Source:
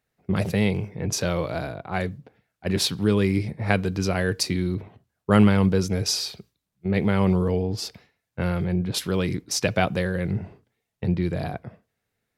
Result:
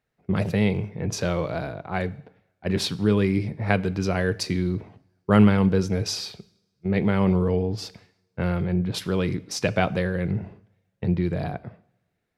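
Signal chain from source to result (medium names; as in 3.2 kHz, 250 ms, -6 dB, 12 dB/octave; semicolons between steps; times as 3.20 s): treble shelf 5.9 kHz -10.5 dB; two-slope reverb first 0.72 s, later 2.4 s, from -27 dB, DRR 17 dB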